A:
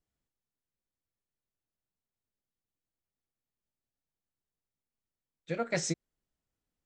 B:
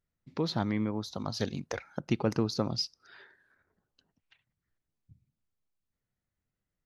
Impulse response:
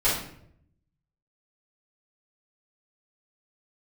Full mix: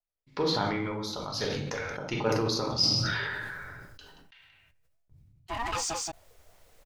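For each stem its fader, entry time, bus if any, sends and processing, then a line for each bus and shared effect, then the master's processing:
-5.0 dB, 0.00 s, no send, echo send -9 dB, sample leveller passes 3; ring modulator with a swept carrier 570 Hz, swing 20%, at 2.6 Hz
+3.0 dB, 0.00 s, send -10.5 dB, echo send -16 dB, notch 660 Hz, Q 14; gate with hold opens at -59 dBFS; noise-modulated level, depth 55%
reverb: on, RT60 0.70 s, pre-delay 3 ms
echo: echo 0.178 s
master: bell 180 Hz -11 dB 2.3 oct; sustainer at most 23 dB/s

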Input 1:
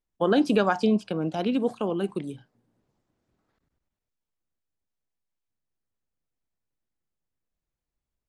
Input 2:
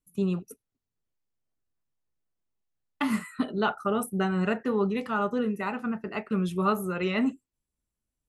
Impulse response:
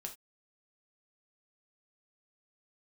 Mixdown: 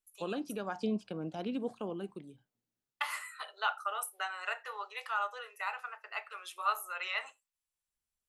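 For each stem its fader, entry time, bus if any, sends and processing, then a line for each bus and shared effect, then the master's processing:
-11.0 dB, 0.00 s, no send, auto duck -16 dB, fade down 1.10 s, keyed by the second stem
-3.0 dB, 0.00 s, send -7 dB, Bessel high-pass 1100 Hz, order 8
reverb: on, pre-delay 3 ms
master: dry

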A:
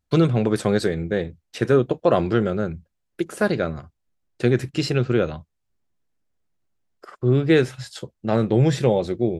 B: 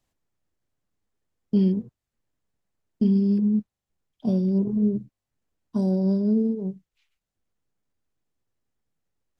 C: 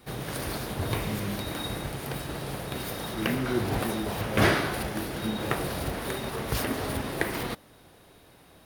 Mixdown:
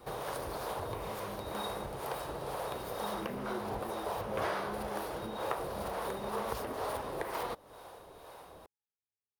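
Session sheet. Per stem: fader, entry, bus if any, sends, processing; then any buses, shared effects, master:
off
-7.5 dB, 0.00 s, bus A, no send, octave resonator G#, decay 0.6 s
+1.0 dB, 0.00 s, no bus, no send, compressor 3:1, threshold -40 dBFS, peak gain reduction 16.5 dB; harmonic tremolo 2.1 Hz, depth 50%, crossover 430 Hz
bus A: 0.0 dB, limiter -38 dBFS, peak gain reduction 11.5 dB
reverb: off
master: ten-band EQ 125 Hz -4 dB, 250 Hz -6 dB, 500 Hz +8 dB, 1000 Hz +10 dB, 2000 Hz -3 dB

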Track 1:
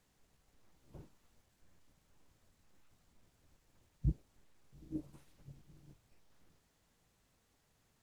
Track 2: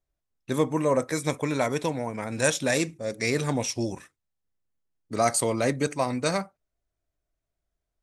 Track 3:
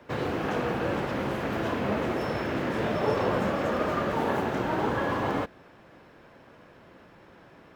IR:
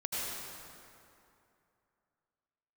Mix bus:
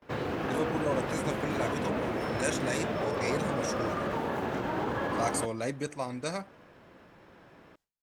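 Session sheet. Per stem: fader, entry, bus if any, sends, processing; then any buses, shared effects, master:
-7.5 dB, 0.20 s, no send, Bessel high-pass 210 Hz
-8.5 dB, 0.00 s, no send, dry
-2.5 dB, 0.00 s, no send, limiter -20.5 dBFS, peak gain reduction 5.5 dB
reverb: off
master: gate with hold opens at -47 dBFS

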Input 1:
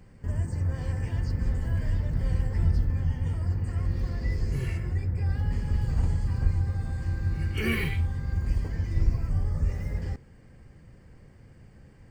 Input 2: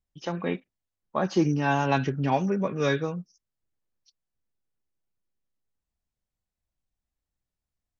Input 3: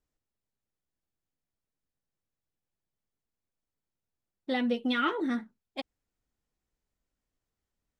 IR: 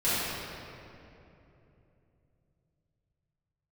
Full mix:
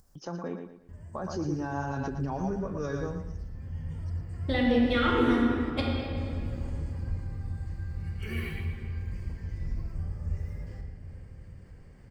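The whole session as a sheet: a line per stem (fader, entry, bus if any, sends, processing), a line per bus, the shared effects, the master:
3.24 s -20 dB -> 3.87 s -12 dB, 0.65 s, bus A, send -15 dB, echo send -9 dB, dry
-4.0 dB, 0.00 s, bus A, no send, echo send -9.5 dB, band shelf 2700 Hz -14 dB 1.2 oct
+1.5 dB, 0.00 s, no bus, send -7.5 dB, no echo send, compressor, threshold -30 dBFS, peak gain reduction 7 dB
bus A: 0.0 dB, upward compressor, threshold -41 dBFS; limiter -24.5 dBFS, peak gain reduction 11 dB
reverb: on, RT60 3.0 s, pre-delay 4 ms
echo: feedback echo 0.114 s, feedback 34%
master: dry

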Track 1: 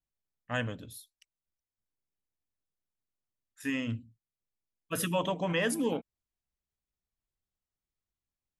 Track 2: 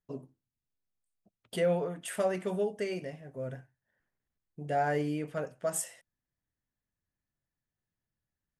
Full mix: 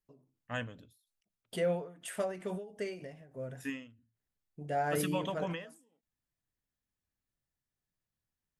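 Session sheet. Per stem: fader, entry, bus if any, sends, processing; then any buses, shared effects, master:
-4.5 dB, 0.00 s, no send, dry
-3.0 dB, 0.00 s, no send, dry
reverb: off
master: ending taper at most 110 dB/s

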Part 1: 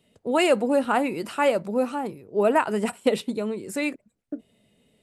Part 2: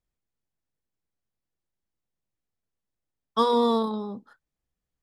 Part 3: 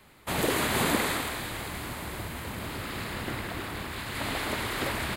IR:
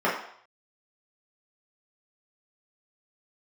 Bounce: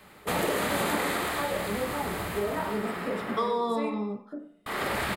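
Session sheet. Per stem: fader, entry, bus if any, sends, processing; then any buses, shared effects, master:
-14.0 dB, 0.00 s, send -8 dB, no echo send, compressor, threshold -22 dBFS, peak gain reduction 7.5 dB
-5.0 dB, 0.00 s, send -16.5 dB, no echo send, dry
+1.5 dB, 0.00 s, muted 3.47–4.66, send -17 dB, echo send -17.5 dB, HPF 130 Hz 6 dB/oct; auto duck -21 dB, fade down 0.90 s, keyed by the second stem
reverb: on, RT60 0.65 s, pre-delay 3 ms
echo: echo 0.106 s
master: low shelf 69 Hz +9.5 dB; compressor 3:1, threshold -26 dBFS, peak gain reduction 7.5 dB

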